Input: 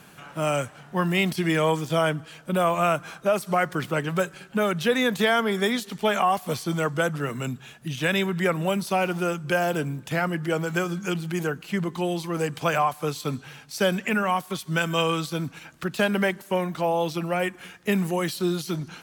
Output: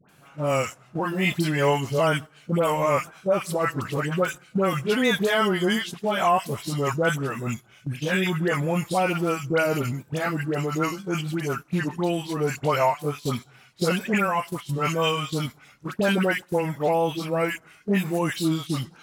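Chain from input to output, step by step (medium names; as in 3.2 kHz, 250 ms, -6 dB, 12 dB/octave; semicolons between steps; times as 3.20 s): sawtooth pitch modulation -2.5 st, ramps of 992 ms; phase dispersion highs, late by 90 ms, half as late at 1.2 kHz; gate -35 dBFS, range -9 dB; trim +2 dB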